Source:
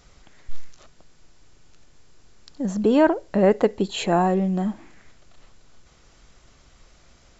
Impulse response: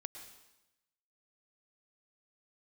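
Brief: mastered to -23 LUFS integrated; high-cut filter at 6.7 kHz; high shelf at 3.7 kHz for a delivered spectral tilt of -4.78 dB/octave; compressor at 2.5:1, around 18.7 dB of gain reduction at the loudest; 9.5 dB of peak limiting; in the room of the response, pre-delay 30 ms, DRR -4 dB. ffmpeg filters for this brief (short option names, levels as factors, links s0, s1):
-filter_complex "[0:a]lowpass=6700,highshelf=f=3700:g=6.5,acompressor=threshold=0.00794:ratio=2.5,alimiter=level_in=2.99:limit=0.0631:level=0:latency=1,volume=0.335,asplit=2[s0][s1];[1:a]atrim=start_sample=2205,adelay=30[s2];[s1][s2]afir=irnorm=-1:irlink=0,volume=2.37[s3];[s0][s3]amix=inputs=2:normalize=0,volume=7.08"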